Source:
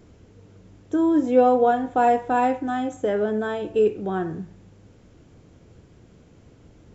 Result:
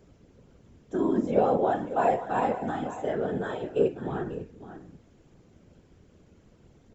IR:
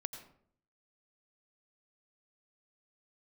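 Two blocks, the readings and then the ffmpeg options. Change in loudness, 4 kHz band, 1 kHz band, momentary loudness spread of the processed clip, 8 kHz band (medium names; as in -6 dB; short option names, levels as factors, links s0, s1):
-6.0 dB, -5.5 dB, -6.5 dB, 12 LU, no reading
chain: -af "aecho=1:1:545:0.224,afftfilt=real='hypot(re,im)*cos(2*PI*random(0))':imag='hypot(re,im)*sin(2*PI*random(1))':win_size=512:overlap=0.75"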